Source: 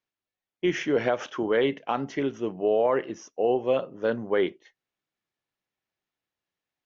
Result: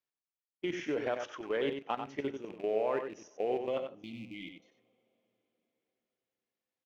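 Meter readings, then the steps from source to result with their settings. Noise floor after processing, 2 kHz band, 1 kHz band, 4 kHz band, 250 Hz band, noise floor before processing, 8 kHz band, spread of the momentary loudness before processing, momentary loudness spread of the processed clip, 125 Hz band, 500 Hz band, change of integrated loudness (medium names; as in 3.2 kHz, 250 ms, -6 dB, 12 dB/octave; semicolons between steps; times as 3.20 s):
under -85 dBFS, -9.5 dB, -8.0 dB, -8.0 dB, -10.0 dB, under -85 dBFS, no reading, 6 LU, 12 LU, -11.5 dB, -9.5 dB, -9.5 dB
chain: rattle on loud lows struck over -38 dBFS, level -33 dBFS; spectral selection erased 3.89–4.68 s, 340–2000 Hz; tone controls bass -3 dB, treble +1 dB; level held to a coarse grid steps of 13 dB; echo from a far wall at 16 m, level -7 dB; two-slope reverb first 0.31 s, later 4.4 s, from -22 dB, DRR 18 dB; trim -5.5 dB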